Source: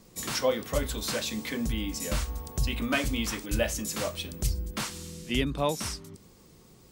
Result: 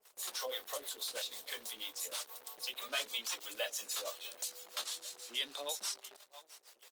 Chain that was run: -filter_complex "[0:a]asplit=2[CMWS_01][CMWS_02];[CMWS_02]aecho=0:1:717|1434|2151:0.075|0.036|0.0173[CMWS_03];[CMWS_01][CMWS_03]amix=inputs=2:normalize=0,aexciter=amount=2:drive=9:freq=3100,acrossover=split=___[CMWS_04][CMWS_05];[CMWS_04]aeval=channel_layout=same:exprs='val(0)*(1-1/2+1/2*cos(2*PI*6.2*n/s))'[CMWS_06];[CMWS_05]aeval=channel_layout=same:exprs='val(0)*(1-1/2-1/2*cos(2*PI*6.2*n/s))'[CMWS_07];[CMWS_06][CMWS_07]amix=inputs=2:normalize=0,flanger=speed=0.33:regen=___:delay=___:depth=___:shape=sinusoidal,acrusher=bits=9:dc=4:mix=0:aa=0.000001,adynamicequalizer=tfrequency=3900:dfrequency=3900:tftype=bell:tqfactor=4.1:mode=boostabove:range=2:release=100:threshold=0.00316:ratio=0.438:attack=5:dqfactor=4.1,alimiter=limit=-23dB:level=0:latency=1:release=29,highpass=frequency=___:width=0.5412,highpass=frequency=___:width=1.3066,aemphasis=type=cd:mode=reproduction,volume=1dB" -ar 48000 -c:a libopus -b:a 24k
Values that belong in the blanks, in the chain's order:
440, 46, 4.7, 9.4, 500, 500